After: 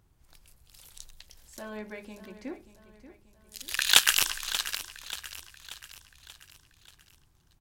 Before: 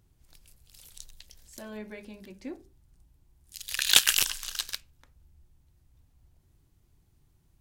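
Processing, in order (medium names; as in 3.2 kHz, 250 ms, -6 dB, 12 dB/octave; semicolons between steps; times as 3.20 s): peaking EQ 1.1 kHz +6.5 dB 1.8 oct; on a send: feedback delay 584 ms, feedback 50%, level -13.5 dB; on the sum: trim -1 dB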